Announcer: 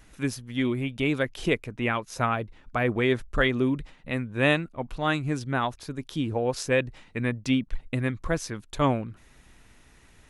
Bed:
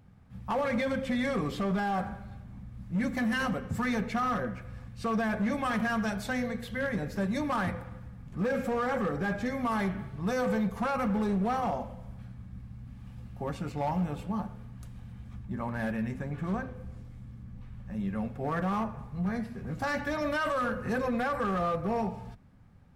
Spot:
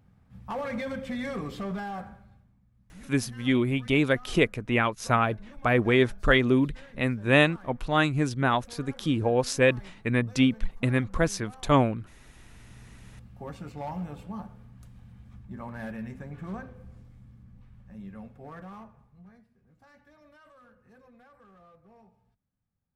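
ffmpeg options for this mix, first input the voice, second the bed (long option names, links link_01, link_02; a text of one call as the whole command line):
ffmpeg -i stem1.wav -i stem2.wav -filter_complex "[0:a]adelay=2900,volume=2.5dB[link_01];[1:a]volume=12dB,afade=type=out:start_time=1.68:duration=0.89:silence=0.141254,afade=type=in:start_time=12.38:duration=0.4:silence=0.16788,afade=type=out:start_time=16.97:duration=2.48:silence=0.0794328[link_02];[link_01][link_02]amix=inputs=2:normalize=0" out.wav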